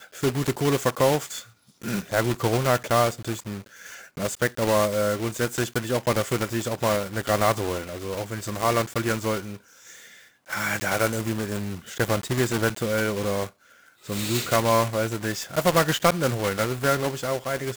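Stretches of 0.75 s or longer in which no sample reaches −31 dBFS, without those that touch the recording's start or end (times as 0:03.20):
0:09.55–0:10.51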